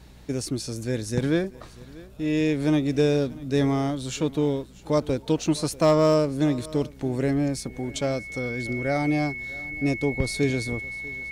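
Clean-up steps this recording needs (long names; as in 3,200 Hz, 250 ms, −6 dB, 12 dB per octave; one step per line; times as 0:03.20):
clipped peaks rebuilt −11.5 dBFS
hum removal 61.7 Hz, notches 4
notch filter 2,200 Hz, Q 30
echo removal 641 ms −21 dB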